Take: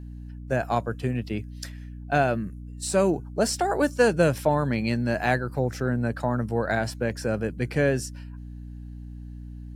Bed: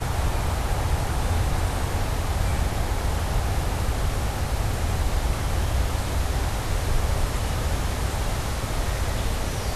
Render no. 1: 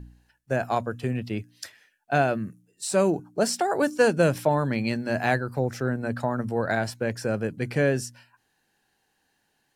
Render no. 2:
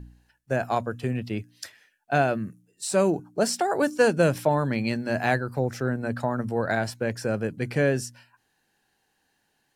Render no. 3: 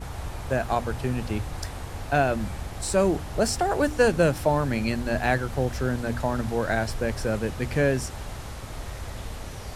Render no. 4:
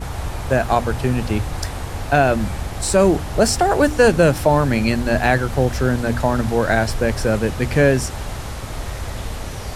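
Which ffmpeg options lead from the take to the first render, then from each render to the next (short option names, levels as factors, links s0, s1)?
-af "bandreject=f=60:t=h:w=4,bandreject=f=120:t=h:w=4,bandreject=f=180:t=h:w=4,bandreject=f=240:t=h:w=4,bandreject=f=300:t=h:w=4"
-af anull
-filter_complex "[1:a]volume=0.316[s0];[0:a][s0]amix=inputs=2:normalize=0"
-af "volume=2.51,alimiter=limit=0.708:level=0:latency=1"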